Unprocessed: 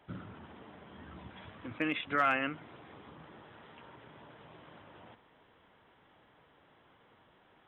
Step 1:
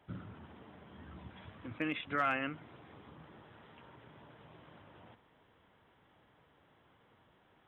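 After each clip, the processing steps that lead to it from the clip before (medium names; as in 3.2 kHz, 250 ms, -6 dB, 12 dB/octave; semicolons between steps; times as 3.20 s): peaking EQ 86 Hz +5 dB 2.5 oct; trim -4 dB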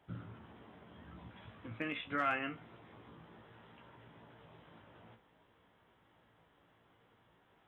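feedback comb 57 Hz, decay 0.19 s, harmonics all, mix 90%; trim +3 dB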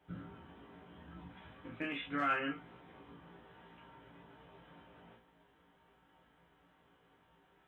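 reverberation, pre-delay 7 ms, DRR -2 dB; trim -3.5 dB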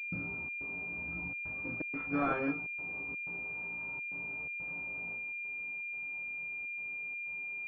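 trance gate ".xxx.xxxxxx" 124 bpm -60 dB; class-D stage that switches slowly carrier 2.4 kHz; trim +6 dB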